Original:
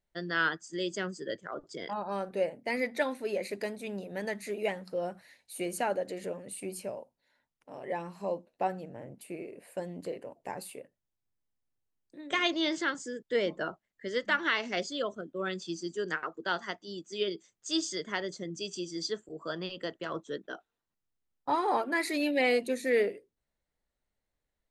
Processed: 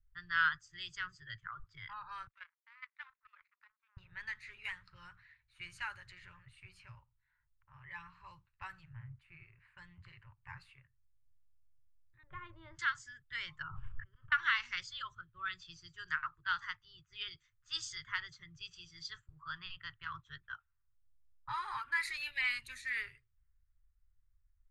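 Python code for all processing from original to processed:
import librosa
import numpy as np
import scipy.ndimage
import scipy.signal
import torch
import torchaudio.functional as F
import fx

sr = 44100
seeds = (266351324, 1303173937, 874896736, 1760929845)

y = fx.chain(x, sr, fx.power_curve(exponent=2.0),
    fx.highpass(hz=620.0, slope=24),
    fx.level_steps(step_db=13), at=(2.27, 3.97))
y = fx.chain(y, sr, fx.lowpass_res(hz=570.0, q=3.4),
    fx.low_shelf(hz=410.0, db=5.5), at=(12.23, 12.79))
y = fx.chain(y, sr, fx.auto_swell(attack_ms=208.0),
    fx.moving_average(points=22),
    fx.sustainer(db_per_s=28.0), at=(13.62, 14.32))
y = fx.env_lowpass(y, sr, base_hz=1400.0, full_db=-26.0)
y = scipy.signal.sosfilt(scipy.signal.cheby2(4, 40, [190.0, 720.0], 'bandstop', fs=sr, output='sos'), y)
y = fx.tilt_eq(y, sr, slope=-3.0)
y = y * librosa.db_to_amplitude(1.0)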